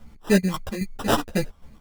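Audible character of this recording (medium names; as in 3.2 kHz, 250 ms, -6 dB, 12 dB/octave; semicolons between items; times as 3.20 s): phasing stages 2, 3.1 Hz, lowest notch 370–2800 Hz; aliases and images of a low sample rate 2.2 kHz, jitter 0%; chopped level 3.7 Hz, depth 60%, duty 55%; a shimmering, thickened sound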